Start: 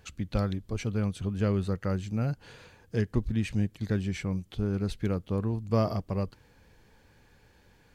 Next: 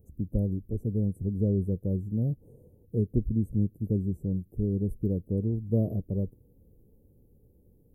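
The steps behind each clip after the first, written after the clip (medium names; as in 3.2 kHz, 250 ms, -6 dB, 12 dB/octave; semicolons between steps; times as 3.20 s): inverse Chebyshev band-stop 1.5–4.5 kHz, stop band 70 dB; trim +1.5 dB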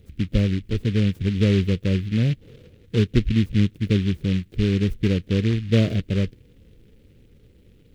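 delay time shaken by noise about 2.5 kHz, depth 0.1 ms; trim +7.5 dB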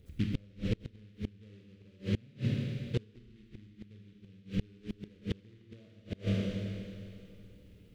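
Schroeder reverb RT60 2.5 s, combs from 26 ms, DRR -1 dB; inverted gate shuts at -11 dBFS, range -31 dB; trim -7.5 dB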